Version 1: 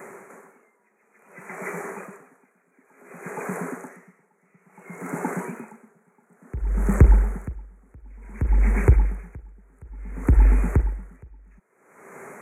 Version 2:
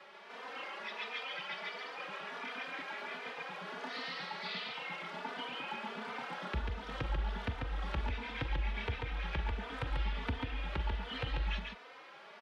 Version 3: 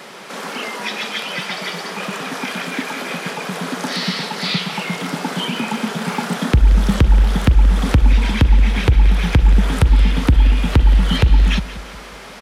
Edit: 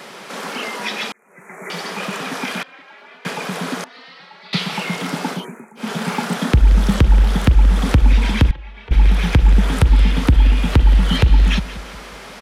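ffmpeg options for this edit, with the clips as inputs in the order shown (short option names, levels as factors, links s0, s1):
-filter_complex "[0:a]asplit=2[s0][s1];[1:a]asplit=3[s2][s3][s4];[2:a]asplit=6[s5][s6][s7][s8][s9][s10];[s5]atrim=end=1.122[s11];[s0]atrim=start=1.118:end=1.702[s12];[s6]atrim=start=1.698:end=2.632[s13];[s2]atrim=start=2.628:end=3.252[s14];[s7]atrim=start=3.248:end=3.842[s15];[s3]atrim=start=3.838:end=4.532[s16];[s8]atrim=start=4.528:end=5.46[s17];[s1]atrim=start=5.3:end=5.91[s18];[s9]atrim=start=5.75:end=8.512[s19];[s4]atrim=start=8.508:end=8.912[s20];[s10]atrim=start=8.908[s21];[s11][s12]acrossfade=d=0.004:c1=hsin:c2=hsin[s22];[s22][s13]acrossfade=d=0.004:c1=hsin:c2=hsin[s23];[s23][s14]acrossfade=d=0.004:c1=hsin:c2=hsin[s24];[s24][s15]acrossfade=d=0.004:c1=hsin:c2=hsin[s25];[s25][s16]acrossfade=d=0.004:c1=hsin:c2=hsin[s26];[s26][s17]acrossfade=d=0.004:c1=hsin:c2=hsin[s27];[s27][s18]acrossfade=d=0.16:c1=tri:c2=tri[s28];[s28][s19]acrossfade=d=0.16:c1=tri:c2=tri[s29];[s29][s20]acrossfade=d=0.004:c1=hsin:c2=hsin[s30];[s30][s21]acrossfade=d=0.004:c1=hsin:c2=hsin"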